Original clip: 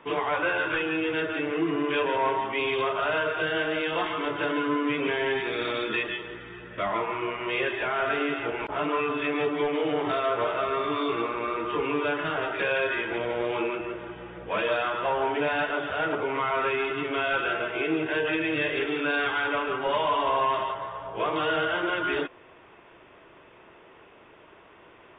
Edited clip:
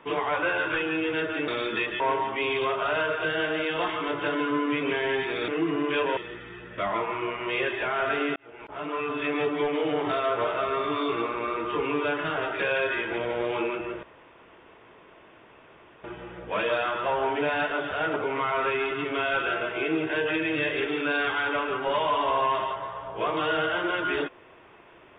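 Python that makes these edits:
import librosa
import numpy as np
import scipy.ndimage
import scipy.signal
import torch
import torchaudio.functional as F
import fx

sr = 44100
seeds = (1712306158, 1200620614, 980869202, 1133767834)

y = fx.edit(x, sr, fx.swap(start_s=1.48, length_s=0.69, other_s=5.65, other_length_s=0.52),
    fx.fade_in_span(start_s=8.36, length_s=0.95),
    fx.insert_room_tone(at_s=14.03, length_s=2.01), tone=tone)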